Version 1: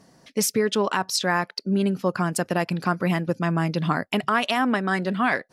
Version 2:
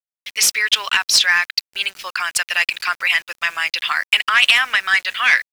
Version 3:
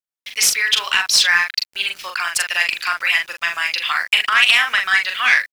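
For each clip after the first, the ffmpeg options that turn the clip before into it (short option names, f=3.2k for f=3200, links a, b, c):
-filter_complex "[0:a]highpass=f=2.4k:t=q:w=1.8,asplit=2[a][b];[b]highpass=f=720:p=1,volume=15dB,asoftclip=type=tanh:threshold=-6dB[c];[a][c]amix=inputs=2:normalize=0,lowpass=f=5.2k:p=1,volume=-6dB,aeval=exprs='val(0)*gte(abs(val(0)),0.00841)':c=same,volume=5.5dB"
-filter_complex "[0:a]asplit=2[a][b];[b]adelay=41,volume=-4.5dB[c];[a][c]amix=inputs=2:normalize=0,volume=-1dB"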